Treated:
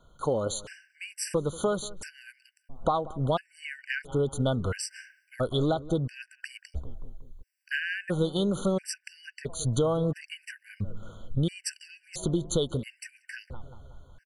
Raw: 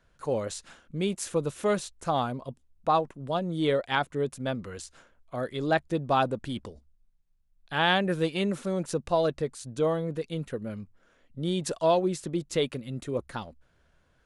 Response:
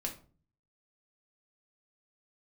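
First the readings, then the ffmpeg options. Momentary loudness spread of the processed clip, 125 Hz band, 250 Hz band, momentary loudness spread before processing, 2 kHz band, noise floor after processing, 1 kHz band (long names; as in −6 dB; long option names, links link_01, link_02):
18 LU, +3.0 dB, −1.0 dB, 14 LU, −2.0 dB, −72 dBFS, −6.5 dB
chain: -filter_complex "[0:a]asubboost=boost=4:cutoff=100,dynaudnorm=framelen=670:gausssize=9:maxgain=8.5dB,alimiter=limit=-11dB:level=0:latency=1:release=359,acompressor=threshold=-31dB:ratio=6,asplit=2[link_01][link_02];[link_02]adelay=185,lowpass=frequency=1400:poles=1,volume=-18dB,asplit=2[link_03][link_04];[link_04]adelay=185,lowpass=frequency=1400:poles=1,volume=0.54,asplit=2[link_05][link_06];[link_06]adelay=185,lowpass=frequency=1400:poles=1,volume=0.54,asplit=2[link_07][link_08];[link_08]adelay=185,lowpass=frequency=1400:poles=1,volume=0.54,asplit=2[link_09][link_10];[link_10]adelay=185,lowpass=frequency=1400:poles=1,volume=0.54[link_11];[link_01][link_03][link_05][link_07][link_09][link_11]amix=inputs=6:normalize=0,afftfilt=real='re*gt(sin(2*PI*0.74*pts/sr)*(1-2*mod(floor(b*sr/1024/1500),2)),0)':imag='im*gt(sin(2*PI*0.74*pts/sr)*(1-2*mod(floor(b*sr/1024/1500),2)),0)':win_size=1024:overlap=0.75,volume=7.5dB"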